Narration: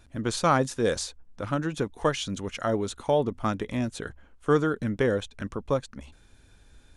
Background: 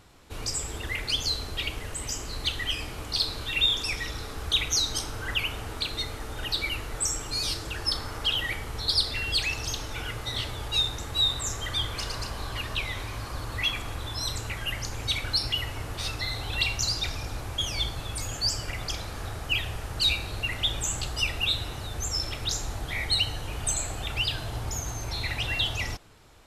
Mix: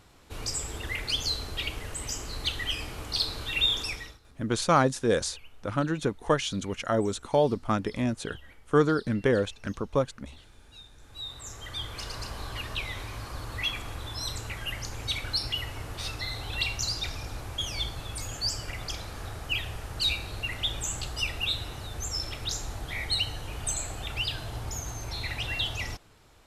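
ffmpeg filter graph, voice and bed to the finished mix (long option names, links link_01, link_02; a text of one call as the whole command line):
ffmpeg -i stem1.wav -i stem2.wav -filter_complex "[0:a]adelay=4250,volume=0.5dB[link_01];[1:a]volume=20.5dB,afade=type=out:start_time=3.8:duration=0.39:silence=0.0668344,afade=type=in:start_time=10.99:duration=1.33:silence=0.0794328[link_02];[link_01][link_02]amix=inputs=2:normalize=0" out.wav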